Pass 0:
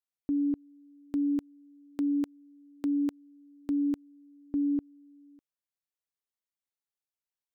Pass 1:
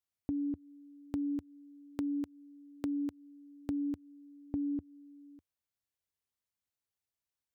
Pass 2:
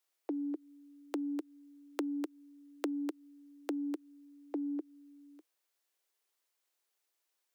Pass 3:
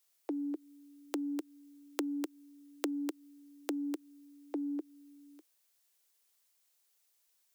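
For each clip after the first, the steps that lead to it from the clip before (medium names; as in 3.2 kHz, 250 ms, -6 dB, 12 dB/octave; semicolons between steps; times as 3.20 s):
peaking EQ 84 Hz +12 dB 1.2 oct; compression, threshold -33 dBFS, peak gain reduction 7.5 dB
steep high-pass 310 Hz 96 dB/octave; trim +9 dB
treble shelf 3.5 kHz +10 dB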